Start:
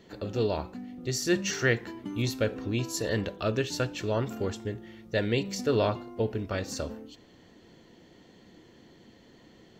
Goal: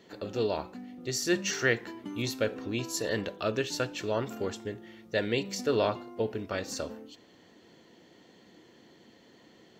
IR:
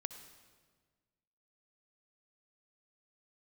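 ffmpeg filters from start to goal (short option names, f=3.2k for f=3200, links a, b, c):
-af "highpass=f=240:p=1"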